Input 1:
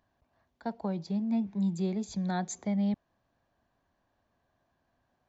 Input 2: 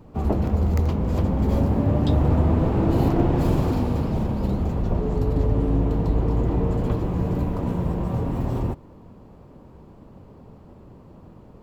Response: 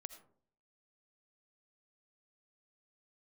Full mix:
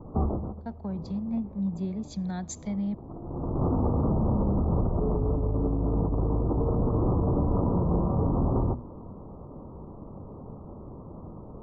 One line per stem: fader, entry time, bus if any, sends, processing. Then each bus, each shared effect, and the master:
-3.0 dB, 0.00 s, send -14 dB, tone controls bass +8 dB, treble -5 dB; compressor 2:1, threshold -31 dBFS, peak gain reduction 6.5 dB; three-band expander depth 100%
+0.5 dB, 0.00 s, send -21 dB, steep low-pass 1300 Hz 96 dB/oct; notches 60/120/180/240 Hz; negative-ratio compressor -25 dBFS, ratio -1; auto duck -22 dB, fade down 0.40 s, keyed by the first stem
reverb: on, pre-delay 40 ms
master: limiter -17 dBFS, peak gain reduction 5.5 dB

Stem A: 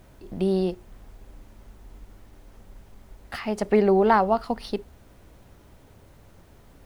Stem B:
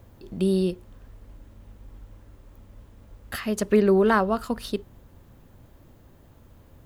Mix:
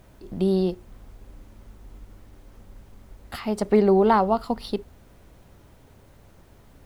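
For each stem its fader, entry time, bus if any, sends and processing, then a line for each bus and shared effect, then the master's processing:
-0.5 dB, 0.00 s, no send, dry
-10.0 dB, 0.00 s, no send, dry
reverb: off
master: dry

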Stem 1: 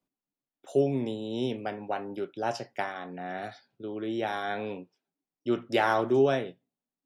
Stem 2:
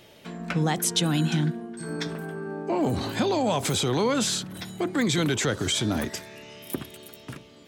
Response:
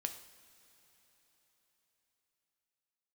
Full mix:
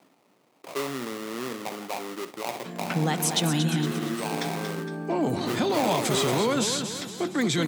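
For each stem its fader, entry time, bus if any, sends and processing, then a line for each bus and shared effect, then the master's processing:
-10.0 dB, 0.00 s, send -3.5 dB, no echo send, sample-rate reducer 1600 Hz, jitter 20%; HPF 280 Hz 6 dB/oct; fast leveller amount 50%
-1.0 dB, 2.40 s, no send, echo send -8 dB, dry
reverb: on, pre-delay 3 ms
echo: feedback echo 0.231 s, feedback 45%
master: HPF 120 Hz 24 dB/oct

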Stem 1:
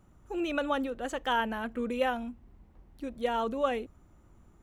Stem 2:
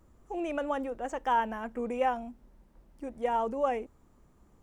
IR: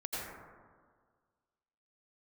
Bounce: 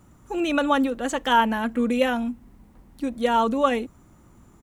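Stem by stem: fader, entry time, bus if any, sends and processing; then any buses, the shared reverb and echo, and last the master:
-0.5 dB, 0.00 s, no send, graphic EQ 125/250/500/1000/2000/4000/8000 Hz +8/+8/+4/+6/+5/+4/+4 dB
+3.0 dB, 3.9 ms, no send, HPF 43 Hz; fixed phaser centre 1300 Hz, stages 4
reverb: off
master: high shelf 3700 Hz +8.5 dB

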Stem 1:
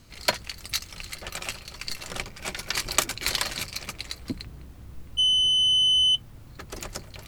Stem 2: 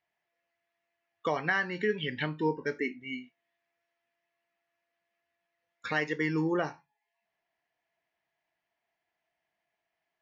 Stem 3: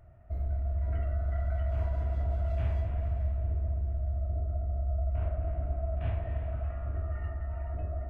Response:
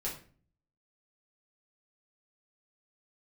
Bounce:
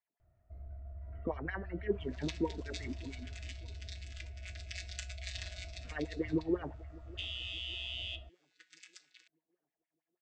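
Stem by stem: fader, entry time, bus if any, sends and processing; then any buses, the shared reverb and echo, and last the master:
-11.5 dB, 2.00 s, send -9 dB, no echo send, chord vocoder bare fifth, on B2; steep high-pass 1800 Hz 36 dB/oct; compressor, threshold -29 dBFS, peak gain reduction 10 dB
-4.0 dB, 0.00 s, no send, echo send -23 dB, tilt -4.5 dB/oct; LFO band-pass sine 6.1 Hz 260–3400 Hz
-15.5 dB, 0.20 s, no send, no echo send, dry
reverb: on, RT60 0.40 s, pre-delay 5 ms
echo: feedback echo 0.601 s, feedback 46%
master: dry

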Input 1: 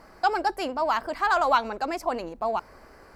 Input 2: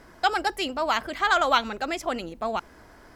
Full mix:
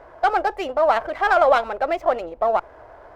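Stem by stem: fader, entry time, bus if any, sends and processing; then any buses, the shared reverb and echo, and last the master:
+2.0 dB, 0.00 s, no send, per-bin expansion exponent 3; HPF 190 Hz
+1.0 dB, 0.00 s, no send, dry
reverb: off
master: EQ curve 120 Hz 0 dB, 200 Hz -13 dB, 610 Hz +13 dB, 7200 Hz -18 dB; running maximum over 3 samples

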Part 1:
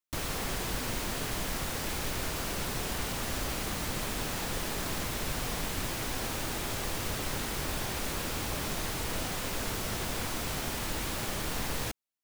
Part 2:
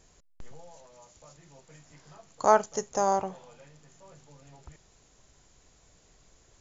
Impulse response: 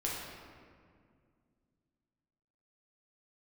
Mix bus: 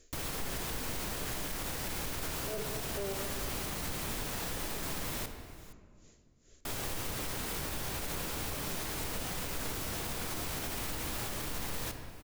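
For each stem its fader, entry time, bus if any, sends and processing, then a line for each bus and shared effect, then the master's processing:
-5.5 dB, 0.00 s, muted 5.26–6.65, send -8.5 dB, echo send -17.5 dB, high shelf 9800 Hz +5.5 dB
-1.5 dB, 0.00 s, send -7 dB, no echo send, treble ducked by the level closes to 550 Hz; fixed phaser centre 360 Hz, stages 4; dB-linear tremolo 2.3 Hz, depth 22 dB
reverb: on, RT60 2.1 s, pre-delay 6 ms
echo: echo 0.469 s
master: limiter -27 dBFS, peak gain reduction 8 dB

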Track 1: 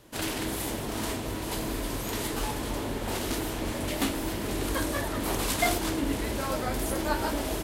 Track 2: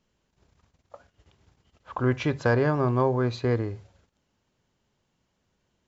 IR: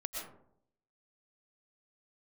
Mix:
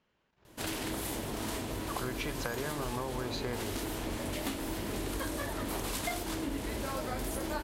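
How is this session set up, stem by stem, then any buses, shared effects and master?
-2.5 dB, 0.45 s, no send, dry
+1.5 dB, 0.00 s, no send, low-pass opened by the level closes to 2300 Hz; tilt +2.5 dB/oct; compressor 2.5:1, threshold -33 dBFS, peak gain reduction 9.5 dB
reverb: off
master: compressor 5:1, threshold -32 dBFS, peak gain reduction 9 dB

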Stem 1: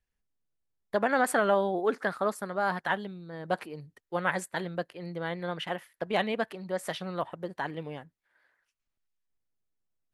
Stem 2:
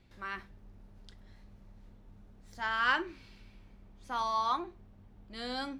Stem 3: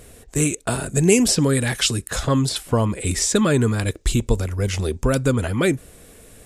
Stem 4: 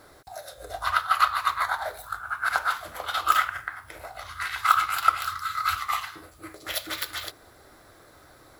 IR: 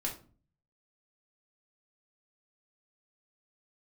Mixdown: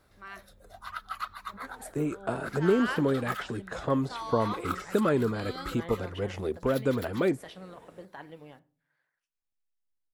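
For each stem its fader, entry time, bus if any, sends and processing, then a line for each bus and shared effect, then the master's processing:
-15.0 dB, 0.55 s, send -11 dB, negative-ratio compressor -32 dBFS, ratio -0.5
-5.0 dB, 0.00 s, no send, dry
-4.5 dB, 1.60 s, no send, de-esser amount 50%; band-pass 590 Hz, Q 0.56
-14.5 dB, 0.00 s, no send, reverb removal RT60 0.7 s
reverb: on, RT60 0.40 s, pre-delay 4 ms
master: dry

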